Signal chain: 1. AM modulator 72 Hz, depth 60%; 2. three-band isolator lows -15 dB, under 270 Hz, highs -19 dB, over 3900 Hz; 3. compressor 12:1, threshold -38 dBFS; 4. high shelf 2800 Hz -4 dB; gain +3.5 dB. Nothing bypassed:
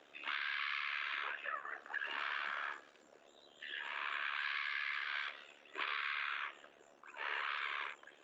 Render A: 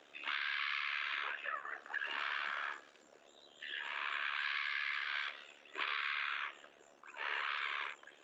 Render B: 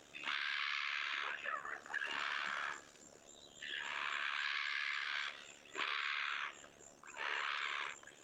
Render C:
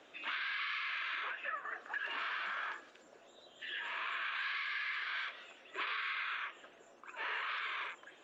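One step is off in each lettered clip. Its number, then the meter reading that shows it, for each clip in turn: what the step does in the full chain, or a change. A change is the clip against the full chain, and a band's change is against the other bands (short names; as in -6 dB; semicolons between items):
4, 4 kHz band +1.5 dB; 2, 250 Hz band +3.5 dB; 1, momentary loudness spread change +2 LU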